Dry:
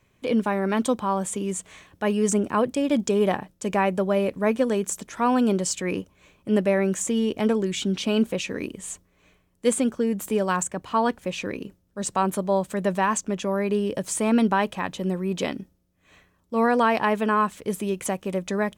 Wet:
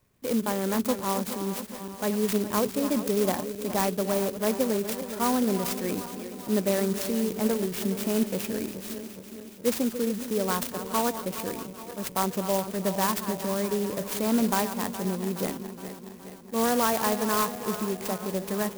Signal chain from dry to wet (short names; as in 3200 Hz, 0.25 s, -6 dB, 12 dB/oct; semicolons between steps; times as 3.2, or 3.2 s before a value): regenerating reverse delay 0.209 s, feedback 76%, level -11 dB; clock jitter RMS 0.09 ms; gain -4 dB